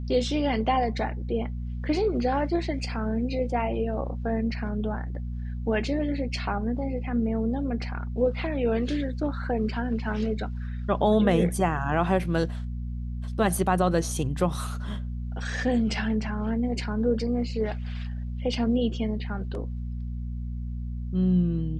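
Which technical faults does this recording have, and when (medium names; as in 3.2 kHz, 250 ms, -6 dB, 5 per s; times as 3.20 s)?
hum 60 Hz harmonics 4 -32 dBFS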